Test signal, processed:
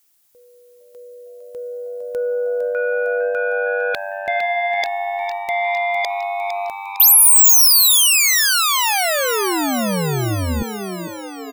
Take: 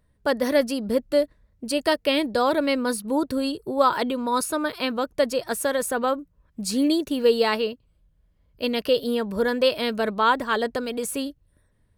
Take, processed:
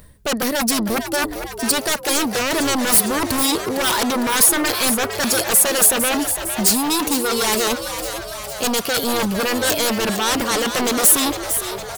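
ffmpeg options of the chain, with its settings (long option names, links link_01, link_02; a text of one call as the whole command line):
ffmpeg -i in.wav -filter_complex "[0:a]areverse,acompressor=threshold=-32dB:ratio=12,areverse,aeval=exprs='0.141*sin(PI/2*7.94*val(0)/0.141)':channel_layout=same,crystalizer=i=2:c=0,asplit=9[link_01][link_02][link_03][link_04][link_05][link_06][link_07][link_08][link_09];[link_02]adelay=456,afreqshift=98,volume=-9dB[link_10];[link_03]adelay=912,afreqshift=196,volume=-12.9dB[link_11];[link_04]adelay=1368,afreqshift=294,volume=-16.8dB[link_12];[link_05]adelay=1824,afreqshift=392,volume=-20.6dB[link_13];[link_06]adelay=2280,afreqshift=490,volume=-24.5dB[link_14];[link_07]adelay=2736,afreqshift=588,volume=-28.4dB[link_15];[link_08]adelay=3192,afreqshift=686,volume=-32.3dB[link_16];[link_09]adelay=3648,afreqshift=784,volume=-36.1dB[link_17];[link_01][link_10][link_11][link_12][link_13][link_14][link_15][link_16][link_17]amix=inputs=9:normalize=0,aeval=exprs='1*(cos(1*acos(clip(val(0)/1,-1,1)))-cos(1*PI/2))+0.00891*(cos(4*acos(clip(val(0)/1,-1,1)))-cos(4*PI/2))':channel_layout=same,volume=-1dB" out.wav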